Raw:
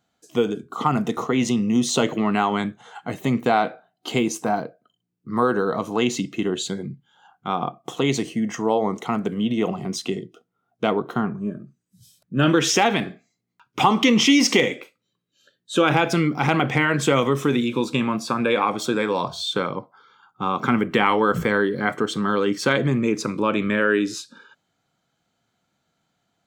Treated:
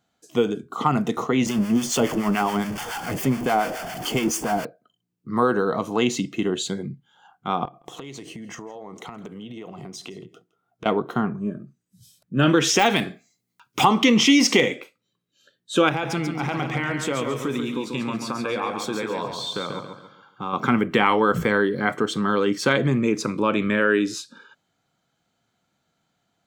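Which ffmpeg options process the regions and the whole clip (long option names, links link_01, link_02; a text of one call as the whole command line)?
ffmpeg -i in.wav -filter_complex "[0:a]asettb=1/sr,asplit=3[link_01][link_02][link_03];[link_01]atrim=end=1.464[link_04];[link_02]atrim=start=1.46:end=4.65,asetpts=PTS-STARTPTS,afade=type=in:duration=0.004:curve=qsin,afade=type=out:start_time=3.186:duration=0.004:curve=qsin,aeval=exprs='val(0)+0.5*0.0708*sgn(val(0))':channel_layout=same,asuperstop=centerf=3900:order=4:qfactor=5.3,acrossover=split=840[link_05][link_06];[link_05]aeval=exprs='val(0)*(1-0.7/2+0.7/2*cos(2*PI*7.1*n/s))':channel_layout=same[link_07];[link_06]aeval=exprs='val(0)*(1-0.7/2-0.7/2*cos(2*PI*7.1*n/s))':channel_layout=same[link_08];[link_07][link_08]amix=inputs=2:normalize=0[link_09];[link_03]atrim=start=4.646[link_10];[link_04][link_09]acrossfade=duration=0.004:curve1=hsin:curve2=qsin[link_11];[link_11][link_10]acrossfade=duration=0.004:curve1=qsin:curve2=hsin,asettb=1/sr,asplit=3[link_12][link_13][link_14];[link_12]atrim=end=7.654[link_15];[link_13]atrim=start=7.65:end=10.86,asetpts=PTS-STARTPTS,afade=type=in:duration=0.004:curve=qsin,afade=type=out:start_time=3.206:duration=0.004:curve=qsin,equalizer=frequency=220:width_type=o:width=0.33:gain=-5.5,acompressor=threshold=-33dB:ratio=16:attack=3.2:release=140:knee=1:detection=peak,aecho=1:1:164:0.0944,atrim=end_sample=141561[link_16];[link_14]atrim=start=10.856[link_17];[link_15][link_16]acrossfade=duration=0.004:curve1=hsin:curve2=qsin[link_18];[link_18][link_17]acrossfade=duration=0.004:curve1=qsin:curve2=hsin,asettb=1/sr,asplit=3[link_19][link_20][link_21];[link_19]atrim=end=12.794[link_22];[link_20]atrim=start=12.79:end=13.85,asetpts=PTS-STARTPTS,afade=type=in:duration=0.004:curve=qsin,afade=type=out:start_time=1.056:duration=0.004:curve=qsin,deesser=0.6,highshelf=frequency=4400:gain=11.5[link_23];[link_21]atrim=start=13.846[link_24];[link_22][link_23]acrossfade=duration=0.004:curve1=hsin:curve2=qsin[link_25];[link_25][link_24]acrossfade=duration=0.004:curve1=qsin:curve2=hsin,asettb=1/sr,asplit=3[link_26][link_27][link_28];[link_26]atrim=end=15.894[link_29];[link_27]atrim=start=15.89:end=20.53,asetpts=PTS-STARTPTS,afade=type=in:duration=0.004:curve=qsin,afade=type=out:start_time=4.636:duration=0.004:curve=qsin,acompressor=threshold=-34dB:ratio=1.5:attack=3.2:release=140:knee=1:detection=peak,aecho=1:1:139|278|417|556:0.501|0.185|0.0686|0.0254,atrim=end_sample=204624[link_30];[link_28]atrim=start=20.526[link_31];[link_29][link_30]acrossfade=duration=0.004:curve1=hsin:curve2=qsin[link_32];[link_32][link_31]acrossfade=duration=0.004:curve1=qsin:curve2=hsin" out.wav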